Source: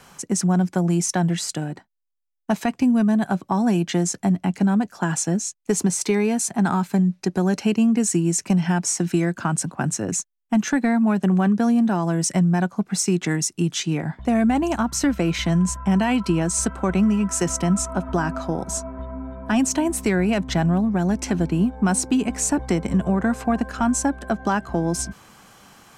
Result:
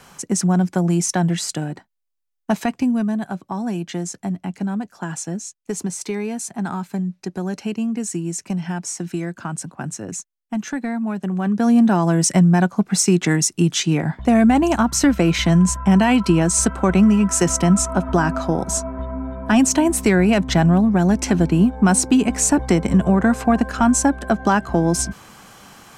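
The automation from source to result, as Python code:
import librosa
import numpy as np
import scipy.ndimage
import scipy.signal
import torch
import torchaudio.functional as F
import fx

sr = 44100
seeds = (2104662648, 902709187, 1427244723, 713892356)

y = fx.gain(x, sr, db=fx.line((2.59, 2.0), (3.31, -5.0), (11.34, -5.0), (11.76, 5.0)))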